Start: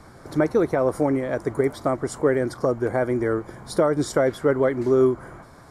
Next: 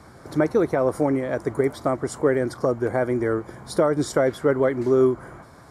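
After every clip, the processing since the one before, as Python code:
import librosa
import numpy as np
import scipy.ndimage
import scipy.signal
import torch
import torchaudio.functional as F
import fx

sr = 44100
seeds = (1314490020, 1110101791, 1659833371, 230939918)

y = scipy.signal.sosfilt(scipy.signal.butter(2, 43.0, 'highpass', fs=sr, output='sos'), x)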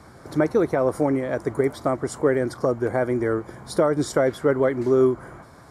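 y = x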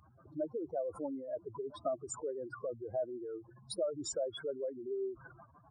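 y = fx.spec_expand(x, sr, power=3.5)
y = fx.low_shelf_res(y, sr, hz=650.0, db=-11.5, q=1.5)
y = F.gain(torch.from_numpy(y), -5.0).numpy()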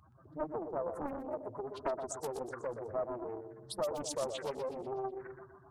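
y = fx.echo_feedback(x, sr, ms=123, feedback_pct=52, wet_db=-7.5)
y = fx.doppler_dist(y, sr, depth_ms=0.85)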